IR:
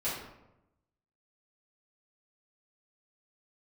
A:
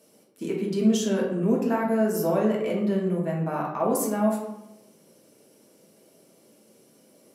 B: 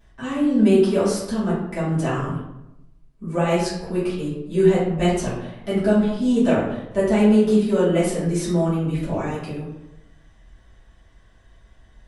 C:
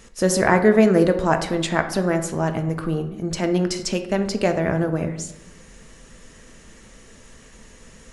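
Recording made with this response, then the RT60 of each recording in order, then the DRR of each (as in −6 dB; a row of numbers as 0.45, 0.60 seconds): B; 0.90, 0.90, 0.90 seconds; −3.0, −11.5, 6.5 decibels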